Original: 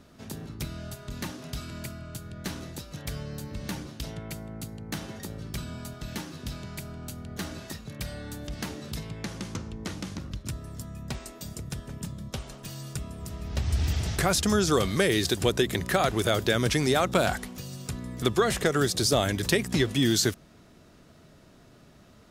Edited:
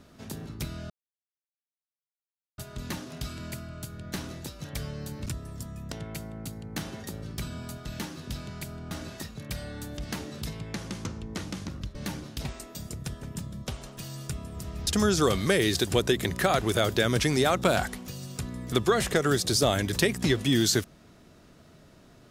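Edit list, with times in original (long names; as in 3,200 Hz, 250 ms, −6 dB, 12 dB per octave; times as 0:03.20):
0:00.90: splice in silence 1.68 s
0:03.58–0:04.08: swap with 0:10.45–0:11.11
0:07.07–0:07.41: remove
0:13.53–0:14.37: remove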